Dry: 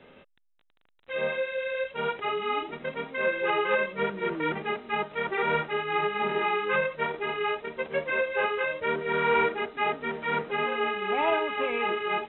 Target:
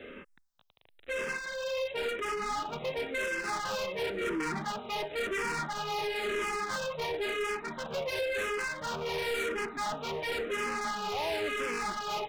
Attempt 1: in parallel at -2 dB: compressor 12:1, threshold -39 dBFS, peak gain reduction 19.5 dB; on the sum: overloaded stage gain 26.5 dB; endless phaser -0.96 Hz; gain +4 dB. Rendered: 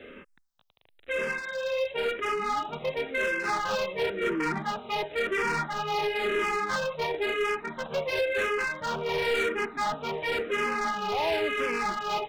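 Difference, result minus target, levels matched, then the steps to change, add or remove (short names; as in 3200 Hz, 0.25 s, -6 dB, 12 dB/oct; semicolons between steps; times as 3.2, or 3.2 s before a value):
overloaded stage: distortion -4 dB
change: overloaded stage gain 33 dB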